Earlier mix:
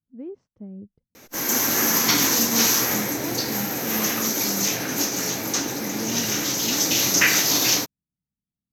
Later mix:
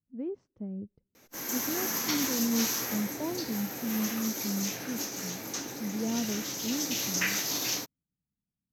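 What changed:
background −11.5 dB
reverb: on

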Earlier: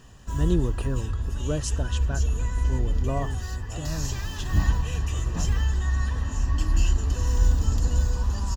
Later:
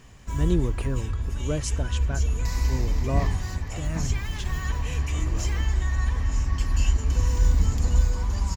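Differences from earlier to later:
second sound: entry −1.40 s
master: remove Butterworth band-reject 2,200 Hz, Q 4.6

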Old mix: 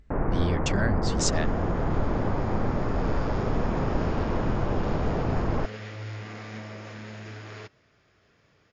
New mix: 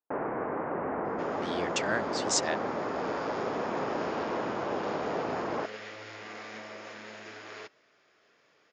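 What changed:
speech: entry +1.10 s
master: add high-pass filter 360 Hz 12 dB per octave

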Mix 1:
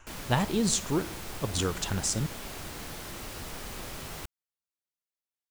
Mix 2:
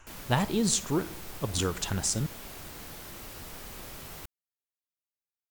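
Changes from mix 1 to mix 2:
background −4.5 dB
master: add parametric band 16,000 Hz +8.5 dB 0.5 octaves

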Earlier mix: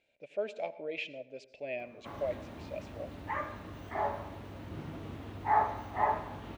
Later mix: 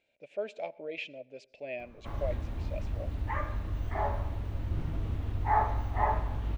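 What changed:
speech: send −8.0 dB
background: remove high-pass filter 180 Hz 12 dB per octave

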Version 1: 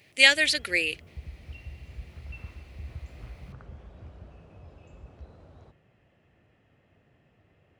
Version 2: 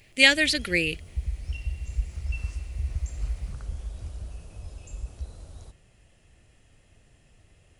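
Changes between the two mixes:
speech: remove high-pass filter 480 Hz 12 dB per octave
background: remove band-pass filter 120–2,000 Hz

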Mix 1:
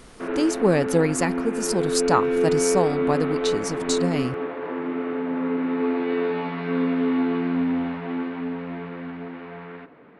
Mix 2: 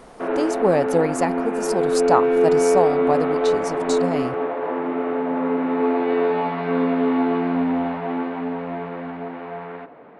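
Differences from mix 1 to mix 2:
speech −4.5 dB
master: add parametric band 710 Hz +11 dB 1.2 octaves

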